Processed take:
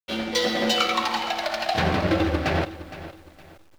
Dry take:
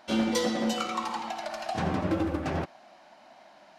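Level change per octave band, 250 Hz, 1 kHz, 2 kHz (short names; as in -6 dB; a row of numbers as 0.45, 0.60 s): +2.0, +6.5, +10.5 dB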